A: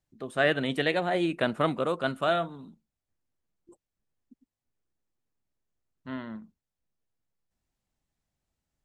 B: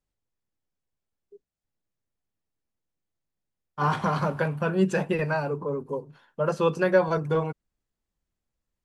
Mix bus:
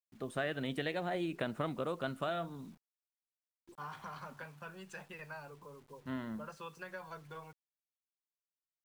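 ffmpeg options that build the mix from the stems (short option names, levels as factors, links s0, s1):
-filter_complex "[0:a]lowshelf=f=120:g=8,acompressor=threshold=0.0316:ratio=4,volume=0.631[s0];[1:a]acrossover=split=130|840[s1][s2][s3];[s1]acompressor=threshold=0.00447:ratio=4[s4];[s2]acompressor=threshold=0.00794:ratio=4[s5];[s3]acompressor=threshold=0.0355:ratio=4[s6];[s4][s5][s6]amix=inputs=3:normalize=0,volume=0.188[s7];[s0][s7]amix=inputs=2:normalize=0,acrusher=bits=10:mix=0:aa=0.000001"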